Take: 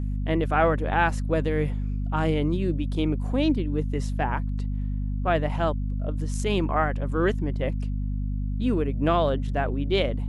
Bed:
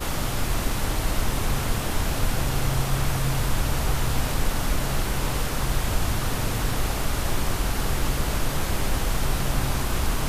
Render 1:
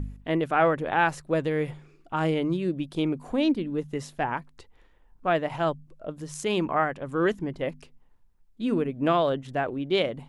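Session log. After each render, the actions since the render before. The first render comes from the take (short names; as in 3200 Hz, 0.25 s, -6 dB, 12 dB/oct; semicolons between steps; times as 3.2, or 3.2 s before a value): de-hum 50 Hz, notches 5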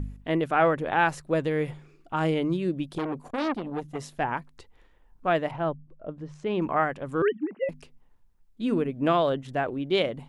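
2.98–4.13 core saturation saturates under 1200 Hz; 5.51–6.62 tape spacing loss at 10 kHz 32 dB; 7.22–7.69 sine-wave speech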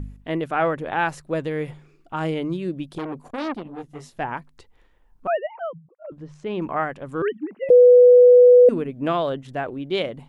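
3.63–4.17 detuned doubles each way 32 cents; 5.27–6.12 sine-wave speech; 7.7–8.69 bleep 493 Hz -7 dBFS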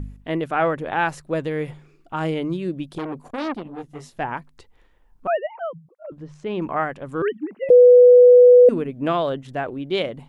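gain +1 dB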